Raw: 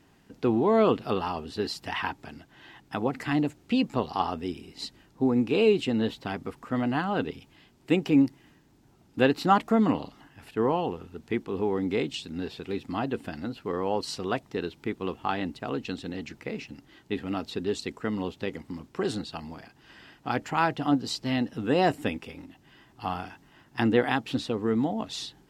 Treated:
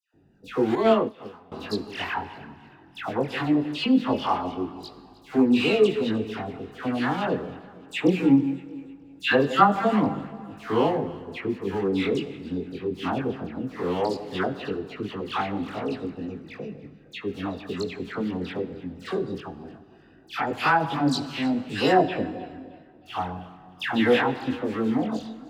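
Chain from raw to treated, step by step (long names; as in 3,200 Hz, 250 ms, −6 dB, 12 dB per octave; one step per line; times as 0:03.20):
adaptive Wiener filter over 41 samples
spectral tilt +1.5 dB per octave
delay that swaps between a low-pass and a high-pass 155 ms, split 1,000 Hz, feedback 59%, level −14 dB
multi-voice chorus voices 2, 0.19 Hz, delay 21 ms, depth 2 ms
all-pass dispersion lows, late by 142 ms, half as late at 1,500 Hz
0:22.02–0:23.06: high-frequency loss of the air 210 metres
dense smooth reverb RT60 1.9 s, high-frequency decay 0.8×, DRR 13.5 dB
0:00.75–0:01.52: expander for the loud parts 2.5 to 1, over −37 dBFS
level +8 dB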